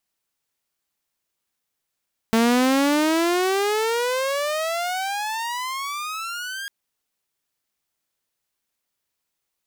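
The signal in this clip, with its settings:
pitch glide with a swell saw, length 4.35 s, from 223 Hz, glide +34.5 semitones, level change −14 dB, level −12.5 dB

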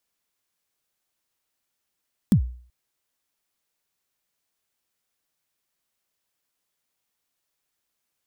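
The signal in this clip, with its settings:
synth kick length 0.38 s, from 240 Hz, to 61 Hz, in 91 ms, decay 0.48 s, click on, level −10 dB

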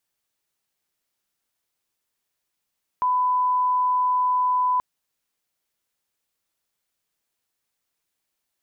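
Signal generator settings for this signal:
line-up tone −18 dBFS 1.78 s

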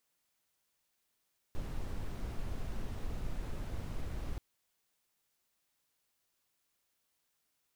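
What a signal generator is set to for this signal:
noise brown, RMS −37 dBFS 2.83 s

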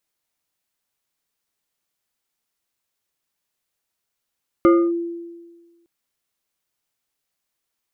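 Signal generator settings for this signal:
two-operator FM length 1.21 s, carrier 340 Hz, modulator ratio 2.58, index 0.72, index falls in 0.27 s linear, decay 1.44 s, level −8 dB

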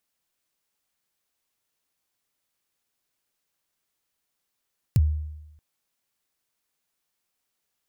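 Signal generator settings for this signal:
synth kick length 0.63 s, from 150 Hz, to 76 Hz, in 37 ms, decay 0.96 s, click on, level −13 dB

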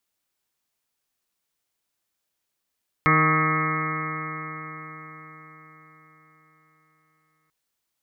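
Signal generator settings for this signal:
stiff-string partials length 4.44 s, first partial 155 Hz, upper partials −4/−7.5/−15/−14/−15.5/−1.5/2.5/−17.5/−11/−6.5/−7/−0.5/−19 dB, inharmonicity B 0.00084, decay 4.88 s, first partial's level −21.5 dB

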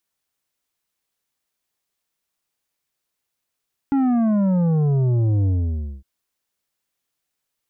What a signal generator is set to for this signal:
bass drop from 280 Hz, over 2.11 s, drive 8.5 dB, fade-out 0.57 s, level −16.5 dB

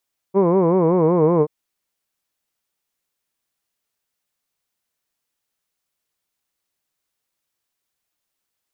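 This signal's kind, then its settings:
vowel by formant synthesis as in hood, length 1.13 s, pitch 185 Hz, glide −2.5 semitones, vibrato depth 1.4 semitones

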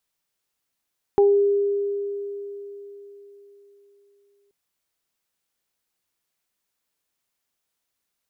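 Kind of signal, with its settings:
harmonic partials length 3.33 s, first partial 403 Hz, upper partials −8 dB, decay 3.95 s, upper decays 0.29 s, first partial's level −12 dB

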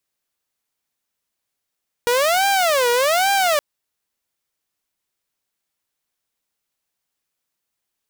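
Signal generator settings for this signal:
siren wail 478–795 Hz 1.2 per second saw −12.5 dBFS 1.52 s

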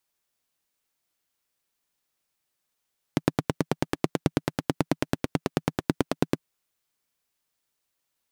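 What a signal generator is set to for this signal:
pulse-train model of a single-cylinder engine, steady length 3.24 s, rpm 1,100, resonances 160/270 Hz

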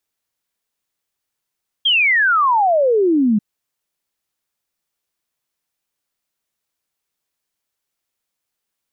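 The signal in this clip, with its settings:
exponential sine sweep 3,300 Hz → 200 Hz 1.54 s −11.5 dBFS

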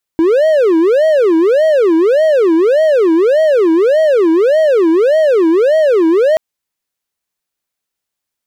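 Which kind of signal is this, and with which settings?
siren wail 321–636 Hz 1.7 per second triangle −5 dBFS 6.18 s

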